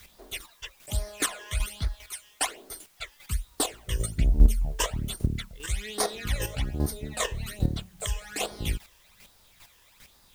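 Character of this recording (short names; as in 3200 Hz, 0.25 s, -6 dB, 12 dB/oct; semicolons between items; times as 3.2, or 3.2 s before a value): phasing stages 12, 1.2 Hz, lowest notch 220–2700 Hz; a quantiser's noise floor 10-bit, dither triangular; chopped level 2.5 Hz, depth 60%, duty 15%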